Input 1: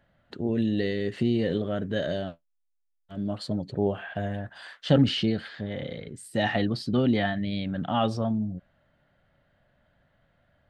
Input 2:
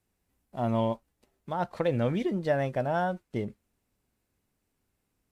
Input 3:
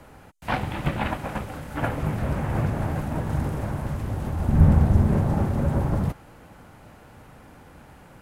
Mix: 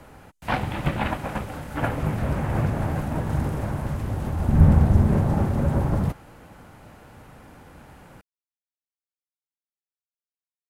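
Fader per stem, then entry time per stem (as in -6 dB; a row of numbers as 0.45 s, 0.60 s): mute, -19.5 dB, +1.0 dB; mute, 0.00 s, 0.00 s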